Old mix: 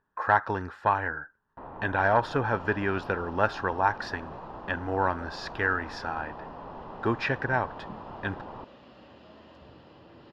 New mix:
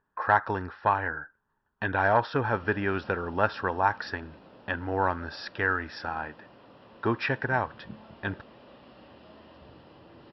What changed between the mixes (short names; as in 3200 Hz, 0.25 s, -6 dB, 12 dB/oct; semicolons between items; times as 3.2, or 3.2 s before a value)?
first sound: muted; master: add brick-wall FIR low-pass 5700 Hz